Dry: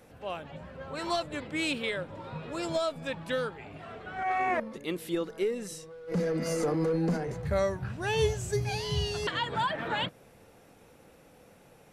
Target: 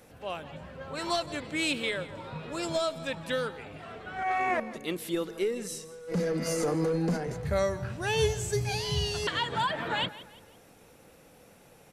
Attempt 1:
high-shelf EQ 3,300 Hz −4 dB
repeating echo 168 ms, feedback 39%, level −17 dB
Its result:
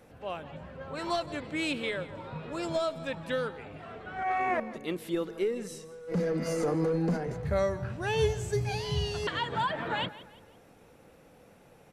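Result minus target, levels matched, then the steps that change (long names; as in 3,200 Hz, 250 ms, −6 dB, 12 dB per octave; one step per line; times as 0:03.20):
8,000 Hz band −6.5 dB
change: high-shelf EQ 3,300 Hz +5 dB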